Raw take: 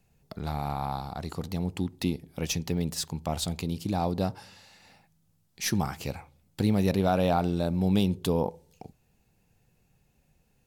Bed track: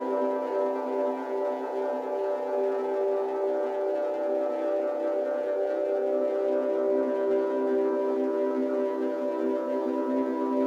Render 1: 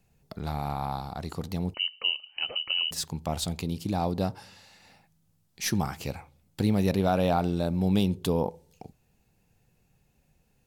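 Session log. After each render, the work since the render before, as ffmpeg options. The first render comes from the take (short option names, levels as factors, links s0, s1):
-filter_complex "[0:a]asettb=1/sr,asplit=3[s0][s1][s2];[s0]atrim=end=1.744[s3];[s1]atrim=start=1.74:end=2.91,asetpts=PTS-STARTPTS,afade=t=in:d=0.004:c=qsin,afade=t=out:st=1.166:d=0.004:c=qsin,lowpass=f=2600:t=q:w=0.5098,lowpass=f=2600:t=q:w=0.6013,lowpass=f=2600:t=q:w=0.9,lowpass=f=2600:t=q:w=2.563,afreqshift=-3100[s4];[s2]atrim=start=2.906[s5];[s3][s4]acrossfade=d=0.004:c1=hsin:c2=qsin[s6];[s6][s5]acrossfade=d=0.004:c1=qsin:c2=hsin"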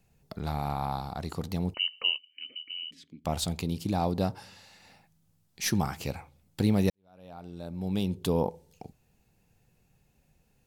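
-filter_complex "[0:a]asettb=1/sr,asplit=3[s0][s1][s2];[s0]atrim=end=2.184[s3];[s1]atrim=start=2.18:end=3.25,asetpts=PTS-STARTPTS,afade=t=in:d=0.004:c=qsin,afade=t=out:st=1.066:d=0.004:c=qsin,asplit=3[s4][s5][s6];[s4]bandpass=f=270:t=q:w=8,volume=1[s7];[s5]bandpass=f=2290:t=q:w=8,volume=0.501[s8];[s6]bandpass=f=3010:t=q:w=8,volume=0.355[s9];[s7][s8][s9]amix=inputs=3:normalize=0[s10];[s2]atrim=start=3.246[s11];[s3][s10]acrossfade=d=0.004:c1=hsin:c2=qsin[s12];[s12][s11]acrossfade=d=0.004:c1=qsin:c2=hsin,asplit=2[s13][s14];[s13]atrim=end=6.9,asetpts=PTS-STARTPTS,afade=t=out:st=6.896:d=0.004:c=hsin[s15];[s14]atrim=start=6.9,asetpts=PTS-STARTPTS,afade=t=in:d=1.48:c=qua[s16];[s15][s16]concat=n=2:v=0:a=1"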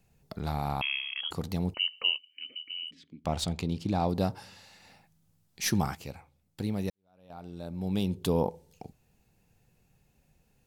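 -filter_complex "[0:a]asettb=1/sr,asplit=3[s0][s1][s2];[s0]atrim=end=0.814[s3];[s1]atrim=start=0.81:end=1.31,asetpts=PTS-STARTPTS,afade=t=in:d=0.004:c=qsin,afade=t=out:st=0.496:d=0.004:c=qsin,lowpass=f=2900:t=q:w=0.5098,lowpass=f=2900:t=q:w=0.6013,lowpass=f=2900:t=q:w=0.9,lowpass=f=2900:t=q:w=2.563,afreqshift=-3400[s4];[s2]atrim=start=1.306[s5];[s3][s4]acrossfade=d=0.004:c1=hsin:c2=qsin[s6];[s6][s5]acrossfade=d=0.004:c1=qsin:c2=hsin,asettb=1/sr,asplit=3[s7][s8][s9];[s7]atrim=end=2.874[s10];[s8]atrim=start=2.87:end=4.09,asetpts=PTS-STARTPTS,afade=t=in:d=0.004:c=qsin,afade=t=out:st=1.216:d=0.004:c=qsin,adynamicsmooth=sensitivity=8:basefreq=5300[s11];[s9]atrim=start=4.086[s12];[s10][s11]acrossfade=d=0.004:c1=hsin:c2=qsin[s13];[s13][s12]acrossfade=d=0.004:c1=qsin:c2=hsin,asplit=3[s14][s15][s16];[s14]atrim=end=5.952[s17];[s15]atrim=start=5.948:end=7.302,asetpts=PTS-STARTPTS,volume=0.422[s18];[s16]atrim=start=7.298[s19];[s17][s18]acrossfade=d=0.004:c1=hsin:c2=hsin[s20];[s20][s19]acrossfade=d=0.004:c1=hsin:c2=hsin"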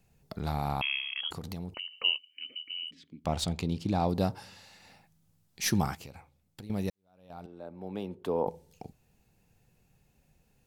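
-filter_complex "[0:a]asettb=1/sr,asplit=3[s0][s1][s2];[s0]atrim=end=1.304[s3];[s1]atrim=start=1.3:end=2.02,asetpts=PTS-STARTPTS,afade=t=in:d=0.004:c=qsin,afade=t=out:st=0.716:d=0.004:c=qsin,acompressor=threshold=0.02:ratio=12:attack=3.2:release=140:knee=1:detection=peak[s4];[s2]atrim=start=2.016[s5];[s3][s4]acrossfade=d=0.004:c1=hsin:c2=qsin[s6];[s6][s5]acrossfade=d=0.004:c1=qsin:c2=hsin,asettb=1/sr,asplit=3[s7][s8][s9];[s7]atrim=end=6.044[s10];[s8]atrim=start=6.04:end=6.7,asetpts=PTS-STARTPTS,afade=t=in:d=0.004:c=qsin,afade=t=out:st=0.656:d=0.004:c=qsin,acompressor=threshold=0.00891:ratio=12:attack=3.2:release=140:knee=1:detection=peak[s11];[s9]atrim=start=6.696[s12];[s10][s11]acrossfade=d=0.004:c1=hsin:c2=qsin[s13];[s13][s12]acrossfade=d=0.004:c1=qsin:c2=hsin,asettb=1/sr,asplit=3[s14][s15][s16];[s14]atrim=end=7.464[s17];[s15]atrim=start=7.46:end=8.47,asetpts=PTS-STARTPTS,afade=t=in:d=0.004:c=qsin,afade=t=out:st=1.006:d=0.004:c=qsin,acrossover=split=290 2100:gain=0.158 1 0.141[s18][s19][s20];[s18][s19][s20]amix=inputs=3:normalize=0[s21];[s16]atrim=start=8.466[s22];[s17][s21]acrossfade=d=0.004:c1=hsin:c2=qsin[s23];[s23][s22]acrossfade=d=0.004:c1=qsin:c2=hsin"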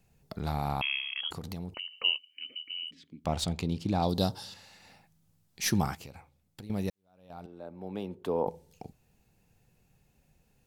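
-filter_complex "[0:a]asettb=1/sr,asplit=3[s0][s1][s2];[s0]atrim=end=4.024[s3];[s1]atrim=start=4.02:end=4.54,asetpts=PTS-STARTPTS,afade=t=in:d=0.004:c=qsin,afade=t=out:st=0.516:d=0.004:c=qsin,highshelf=f=2900:t=q:w=3:g=6[s4];[s2]atrim=start=4.536[s5];[s3][s4]acrossfade=d=0.004:c1=hsin:c2=qsin[s6];[s6][s5]acrossfade=d=0.004:c1=qsin:c2=hsin"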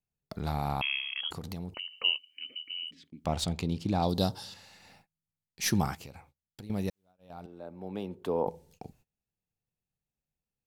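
-af "agate=range=0.0562:threshold=0.00112:ratio=16:detection=peak"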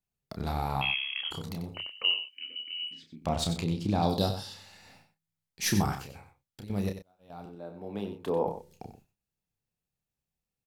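-filter_complex "[0:a]asplit=2[s0][s1];[s1]adelay=30,volume=0.501[s2];[s0][s2]amix=inputs=2:normalize=0,aecho=1:1:93:0.316"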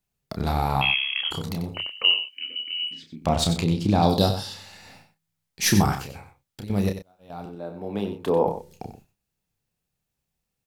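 -af "volume=2.37"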